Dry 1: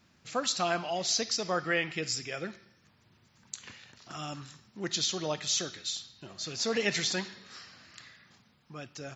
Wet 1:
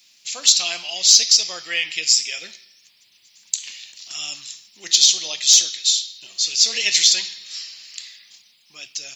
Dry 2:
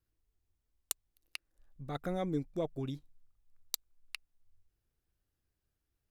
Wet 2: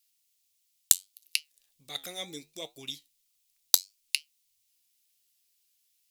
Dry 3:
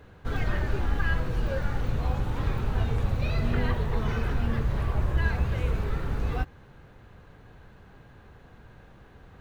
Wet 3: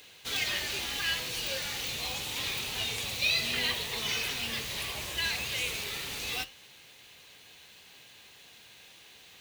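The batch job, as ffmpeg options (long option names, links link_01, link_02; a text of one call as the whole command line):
ffmpeg -i in.wav -af "highpass=frequency=560:poles=1,aexciter=amount=9.6:drive=5.9:freq=2200,flanger=delay=6.4:depth=7.4:regen=-76:speed=0.71:shape=triangular,aeval=exprs='0.891*(abs(mod(val(0)/0.891+3,4)-2)-1)':channel_layout=same" out.wav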